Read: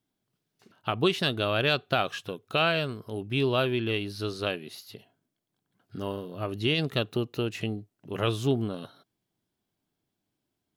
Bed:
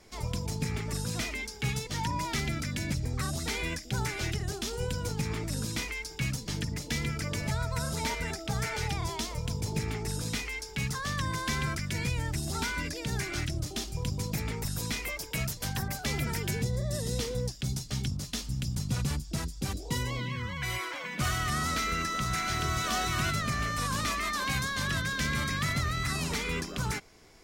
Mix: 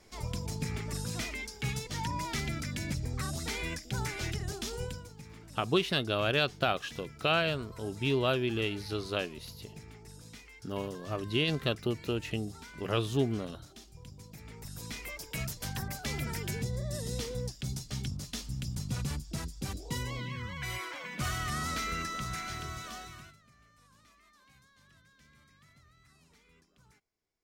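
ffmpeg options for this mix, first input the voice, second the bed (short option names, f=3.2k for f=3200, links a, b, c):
-filter_complex "[0:a]adelay=4700,volume=-3dB[a];[1:a]volume=10dB,afade=t=out:st=4.77:d=0.31:silence=0.199526,afade=t=in:st=14.38:d=1.03:silence=0.223872,afade=t=out:st=21.97:d=1.4:silence=0.0398107[b];[a][b]amix=inputs=2:normalize=0"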